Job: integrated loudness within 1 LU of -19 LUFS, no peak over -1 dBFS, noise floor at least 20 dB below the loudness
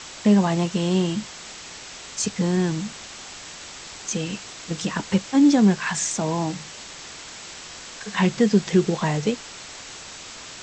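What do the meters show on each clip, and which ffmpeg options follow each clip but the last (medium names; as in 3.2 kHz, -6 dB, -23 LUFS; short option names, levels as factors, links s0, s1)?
noise floor -40 dBFS; noise floor target -43 dBFS; loudness -22.5 LUFS; peak level -7.0 dBFS; loudness target -19.0 LUFS
-> -af "afftdn=nr=6:nf=-40"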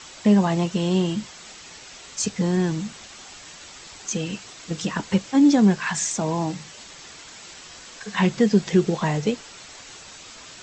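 noise floor -44 dBFS; loudness -22.5 LUFS; peak level -7.0 dBFS; loudness target -19.0 LUFS
-> -af "volume=1.5"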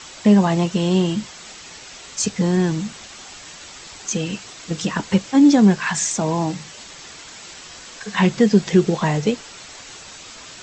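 loudness -19.0 LUFS; peak level -3.5 dBFS; noise floor -40 dBFS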